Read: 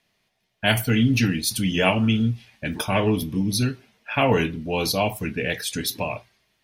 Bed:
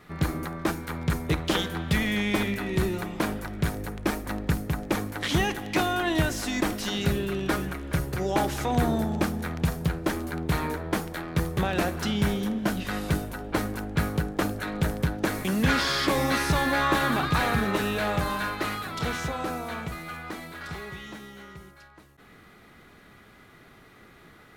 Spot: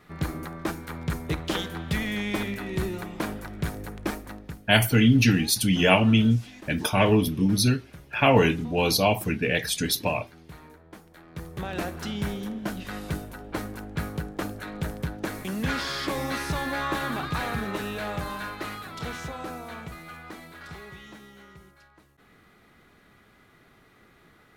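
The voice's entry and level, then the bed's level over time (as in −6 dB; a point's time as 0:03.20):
4.05 s, +1.0 dB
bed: 0:04.12 −3 dB
0:04.73 −19.5 dB
0:11.02 −19.5 dB
0:11.75 −5 dB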